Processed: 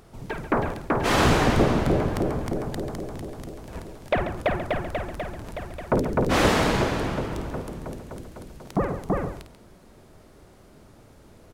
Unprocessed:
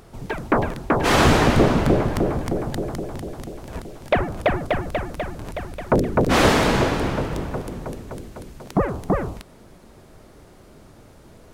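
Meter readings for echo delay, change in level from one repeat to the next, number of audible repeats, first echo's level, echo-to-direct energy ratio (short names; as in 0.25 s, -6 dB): 52 ms, no steady repeat, 2, -10.0 dB, -7.5 dB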